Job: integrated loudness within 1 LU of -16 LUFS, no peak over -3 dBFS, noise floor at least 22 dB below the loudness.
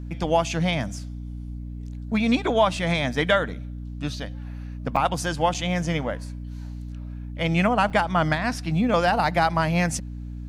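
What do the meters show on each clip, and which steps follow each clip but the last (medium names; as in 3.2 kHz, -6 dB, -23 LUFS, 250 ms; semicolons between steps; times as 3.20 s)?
dropouts 3; longest dropout 5.6 ms; hum 60 Hz; highest harmonic 300 Hz; hum level -31 dBFS; loudness -23.5 LUFS; peak level -7.5 dBFS; loudness target -16.0 LUFS
-> interpolate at 4.96/5.54/7.90 s, 5.6 ms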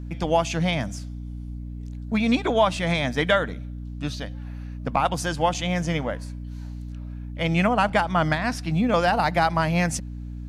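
dropouts 0; hum 60 Hz; highest harmonic 300 Hz; hum level -31 dBFS
-> hum notches 60/120/180/240/300 Hz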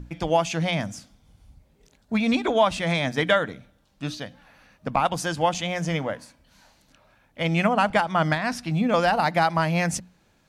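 hum not found; loudness -24.0 LUFS; peak level -8.0 dBFS; loudness target -16.0 LUFS
-> trim +8 dB; peak limiter -3 dBFS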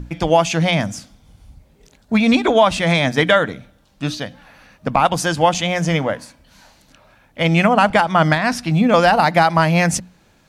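loudness -16.5 LUFS; peak level -3.0 dBFS; noise floor -55 dBFS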